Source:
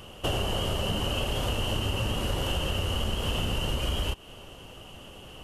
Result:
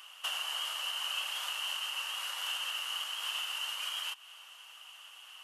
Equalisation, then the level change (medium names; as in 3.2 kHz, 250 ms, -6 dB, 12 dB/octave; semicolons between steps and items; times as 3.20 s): high-pass 1.1 kHz 24 dB/octave; -1.5 dB